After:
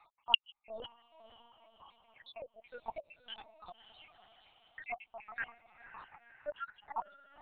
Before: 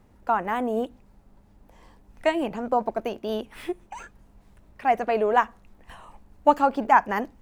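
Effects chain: random holes in the spectrogram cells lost 83%; Bessel high-pass 1.2 kHz, order 8; reverse; compression 8:1, threshold -39 dBFS, peak gain reduction 17.5 dB; reverse; distance through air 110 m; echo that smears into a reverb 532 ms, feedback 46%, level -16 dB; LPC vocoder at 8 kHz pitch kept; tape noise reduction on one side only encoder only; trim +4 dB

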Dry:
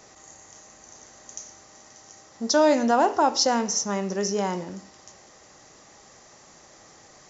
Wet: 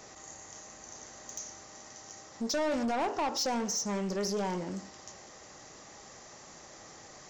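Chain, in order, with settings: in parallel at +3 dB: compression, threshold -31 dBFS, peak gain reduction 15.5 dB; on the sum: saturation -20 dBFS, distortion -8 dB; loudspeaker Doppler distortion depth 0.2 ms; trim -7 dB

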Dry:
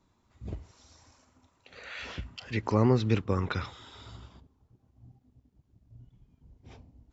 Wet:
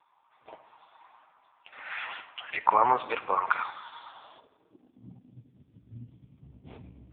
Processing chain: 2.12–3.03 s: de-hum 267.3 Hz, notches 29; 4.19–5.98 s: treble shelf 2.8 kHz +6 dB; high-pass sweep 880 Hz -> 60 Hz, 4.11–5.82 s; reverberation RT60 1.4 s, pre-delay 6 ms, DRR 10.5 dB; trim +7.5 dB; AMR-NB 5.15 kbps 8 kHz

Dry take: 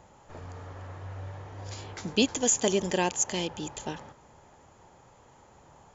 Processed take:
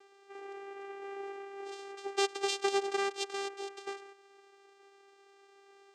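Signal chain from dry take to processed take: spectral peaks clipped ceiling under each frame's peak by 18 dB; vocoder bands 4, saw 396 Hz; trim -5 dB

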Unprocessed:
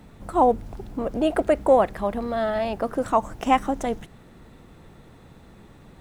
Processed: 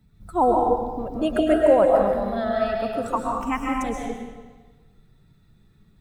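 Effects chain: expander on every frequency bin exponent 1.5; 3.15–3.69 s: static phaser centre 1.6 kHz, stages 4; algorithmic reverb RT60 1.3 s, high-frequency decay 0.9×, pre-delay 90 ms, DRR -1.5 dB

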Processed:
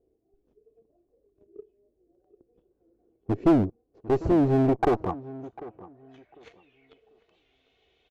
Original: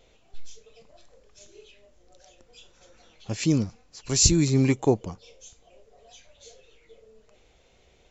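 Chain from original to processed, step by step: high-pass 100 Hz 6 dB/octave; comb 2.7 ms, depth 43%; waveshaping leveller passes 3; compression, threshold -13 dBFS, peak gain reduction 5 dB; low-pass sweep 370 Hz -> 3.3 kHz, 3.65–7.20 s; one-sided clip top -18 dBFS; tape echo 747 ms, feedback 25%, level -15.5 dB, low-pass 1.3 kHz; warped record 78 rpm, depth 100 cents; trim -4.5 dB

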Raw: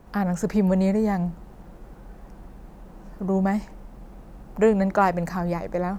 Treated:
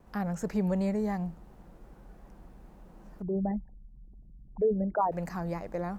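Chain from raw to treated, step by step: 3.22–5.12 s: resonances exaggerated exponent 3; vibrato 2.7 Hz 42 cents; trim -8 dB

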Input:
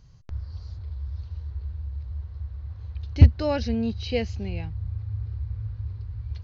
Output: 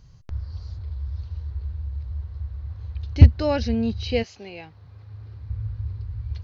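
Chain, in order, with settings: 4.22–5.48 s: high-pass 530 Hz -> 130 Hz 12 dB/octave; trim +2.5 dB

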